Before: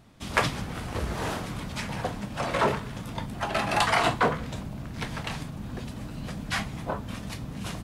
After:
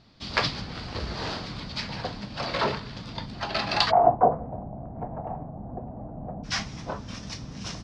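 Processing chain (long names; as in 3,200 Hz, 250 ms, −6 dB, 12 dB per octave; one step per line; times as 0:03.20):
transistor ladder low-pass 5,000 Hz, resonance 70%, from 0:03.90 790 Hz, from 0:06.43 6,000 Hz
level +9 dB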